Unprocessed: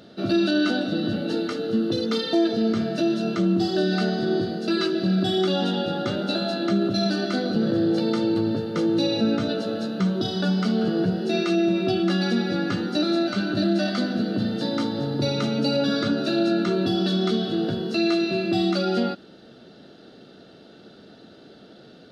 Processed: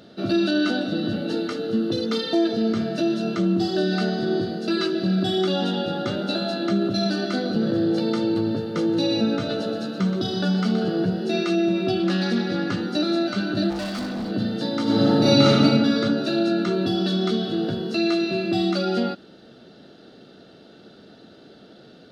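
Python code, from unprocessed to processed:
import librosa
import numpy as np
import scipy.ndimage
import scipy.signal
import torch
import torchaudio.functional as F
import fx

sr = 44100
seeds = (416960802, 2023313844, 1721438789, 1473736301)

y = fx.echo_single(x, sr, ms=124, db=-9.5, at=(8.92, 10.96), fade=0.02)
y = fx.doppler_dist(y, sr, depth_ms=0.1, at=(12.0, 12.81))
y = fx.clip_hard(y, sr, threshold_db=-26.0, at=(13.69, 14.3), fade=0.02)
y = fx.reverb_throw(y, sr, start_s=14.83, length_s=0.78, rt60_s=1.5, drr_db=-10.0)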